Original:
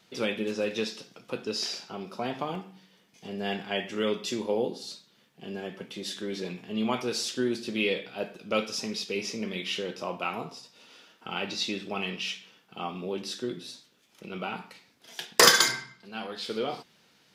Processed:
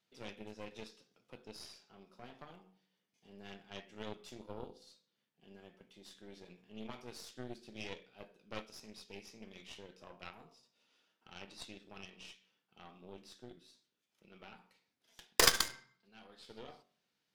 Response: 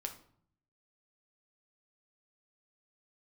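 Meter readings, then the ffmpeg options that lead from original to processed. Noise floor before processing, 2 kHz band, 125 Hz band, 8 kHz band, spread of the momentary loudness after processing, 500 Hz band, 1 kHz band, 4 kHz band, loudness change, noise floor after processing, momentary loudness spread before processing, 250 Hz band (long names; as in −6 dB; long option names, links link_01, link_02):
−64 dBFS, −13.0 dB, −13.5 dB, −10.0 dB, 15 LU, −17.0 dB, −13.5 dB, −12.0 dB, −10.0 dB, −84 dBFS, 12 LU, −18.5 dB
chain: -af "bandreject=frequency=46.28:width_type=h:width=4,bandreject=frequency=92.56:width_type=h:width=4,bandreject=frequency=138.84:width_type=h:width=4,bandreject=frequency=185.12:width_type=h:width=4,bandreject=frequency=231.4:width_type=h:width=4,bandreject=frequency=277.68:width_type=h:width=4,bandreject=frequency=323.96:width_type=h:width=4,bandreject=frequency=370.24:width_type=h:width=4,bandreject=frequency=416.52:width_type=h:width=4,bandreject=frequency=462.8:width_type=h:width=4,bandreject=frequency=509.08:width_type=h:width=4,bandreject=frequency=555.36:width_type=h:width=4,bandreject=frequency=601.64:width_type=h:width=4,bandreject=frequency=647.92:width_type=h:width=4,bandreject=frequency=694.2:width_type=h:width=4,bandreject=frequency=740.48:width_type=h:width=4,bandreject=frequency=786.76:width_type=h:width=4,bandreject=frequency=833.04:width_type=h:width=4,bandreject=frequency=879.32:width_type=h:width=4,bandreject=frequency=925.6:width_type=h:width=4,bandreject=frequency=971.88:width_type=h:width=4,bandreject=frequency=1018.16:width_type=h:width=4,bandreject=frequency=1064.44:width_type=h:width=4,bandreject=frequency=1110.72:width_type=h:width=4,bandreject=frequency=1157:width_type=h:width=4,bandreject=frequency=1203.28:width_type=h:width=4,bandreject=frequency=1249.56:width_type=h:width=4,bandreject=frequency=1295.84:width_type=h:width=4,bandreject=frequency=1342.12:width_type=h:width=4,aeval=exprs='0.75*(cos(1*acos(clip(val(0)/0.75,-1,1)))-cos(1*PI/2))+0.211*(cos(3*acos(clip(val(0)/0.75,-1,1)))-cos(3*PI/2))+0.00473*(cos(6*acos(clip(val(0)/0.75,-1,1)))-cos(6*PI/2))+0.00531*(cos(7*acos(clip(val(0)/0.75,-1,1)))-cos(7*PI/2))+0.0266*(cos(8*acos(clip(val(0)/0.75,-1,1)))-cos(8*PI/2))':channel_layout=same,volume=-1.5dB"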